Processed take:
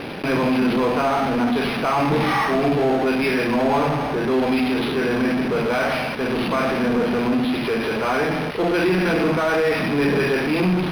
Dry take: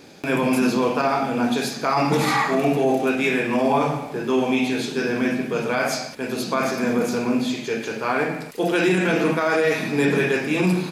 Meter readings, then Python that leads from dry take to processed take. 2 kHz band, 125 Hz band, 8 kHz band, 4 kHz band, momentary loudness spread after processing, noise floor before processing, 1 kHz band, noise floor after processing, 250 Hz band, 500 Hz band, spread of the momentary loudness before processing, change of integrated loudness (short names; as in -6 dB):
+0.5 dB, +2.0 dB, -7.0 dB, +1.5 dB, 3 LU, -34 dBFS, +1.5 dB, -25 dBFS, +1.5 dB, +1.5 dB, 6 LU, +1.5 dB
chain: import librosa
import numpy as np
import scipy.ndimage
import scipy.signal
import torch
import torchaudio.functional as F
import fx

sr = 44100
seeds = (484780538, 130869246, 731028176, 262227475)

p1 = fx.fuzz(x, sr, gain_db=45.0, gate_db=-50.0)
p2 = x + (p1 * librosa.db_to_amplitude(-7.0))
p3 = np.interp(np.arange(len(p2)), np.arange(len(p2))[::6], p2[::6])
y = p3 * librosa.db_to_amplitude(-4.0)